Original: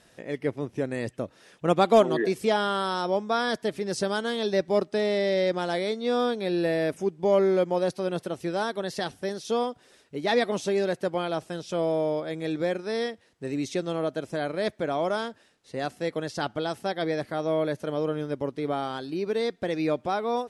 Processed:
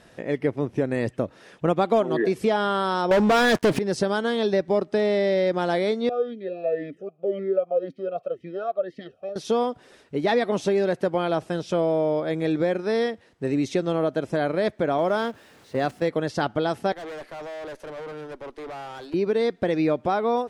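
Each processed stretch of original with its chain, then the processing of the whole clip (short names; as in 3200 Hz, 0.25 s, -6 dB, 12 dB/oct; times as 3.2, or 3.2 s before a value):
3.11–3.79 notches 50/100 Hz + sample leveller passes 5
6.09–9.36 tilt shelf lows +4.5 dB, about 630 Hz + comb 1.6 ms, depth 63% + vowel sweep a-i 1.9 Hz
14.98–16.09 zero-crossing step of -43.5 dBFS + gate -36 dBFS, range -9 dB + HPF 48 Hz
16.92–19.14 Bessel high-pass 480 Hz, order 8 + tube stage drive 41 dB, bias 0.5
whole clip: high shelf 3500 Hz -9.5 dB; compressor 3:1, threshold -27 dBFS; gain +7.5 dB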